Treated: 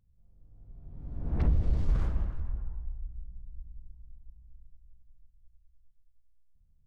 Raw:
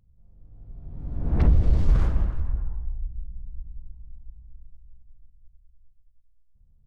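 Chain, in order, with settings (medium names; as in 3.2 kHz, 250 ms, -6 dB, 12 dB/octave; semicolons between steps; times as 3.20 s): spring tank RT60 2.2 s, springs 33/52 ms, chirp 50 ms, DRR 19 dB; trim -7.5 dB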